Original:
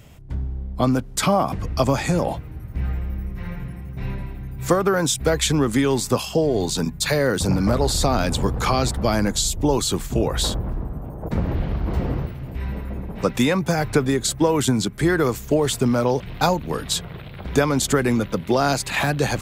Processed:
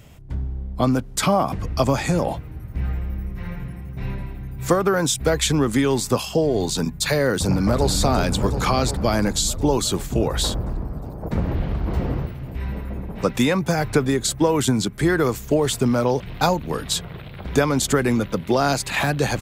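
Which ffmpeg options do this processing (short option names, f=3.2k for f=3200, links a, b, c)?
-filter_complex "[0:a]asplit=2[a][b];[b]afade=t=in:st=7.42:d=0.01,afade=t=out:st=7.88:d=0.01,aecho=0:1:360|720|1080|1440|1800|2160|2520|2880|3240|3600|3960|4320:0.375837|0.281878|0.211409|0.158556|0.118917|0.089188|0.066891|0.0501682|0.0376262|0.0282196|0.0211647|0.0158735[c];[a][c]amix=inputs=2:normalize=0"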